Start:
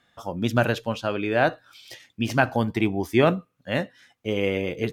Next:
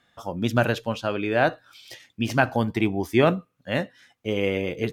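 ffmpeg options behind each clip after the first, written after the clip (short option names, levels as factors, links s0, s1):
-af anull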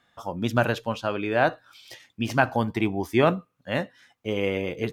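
-af "equalizer=f=1000:t=o:w=0.9:g=4,volume=0.794"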